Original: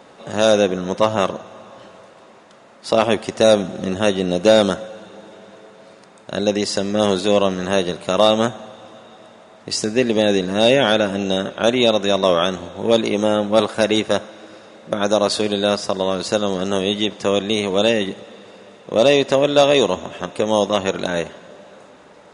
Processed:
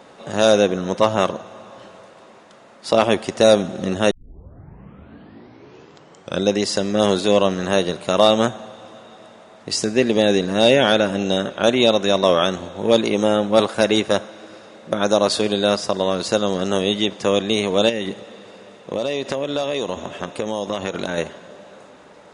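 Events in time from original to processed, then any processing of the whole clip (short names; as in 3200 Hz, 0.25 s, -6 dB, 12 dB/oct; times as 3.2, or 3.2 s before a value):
4.11 tape start 2.42 s
17.89–21.18 compressor, threshold -19 dBFS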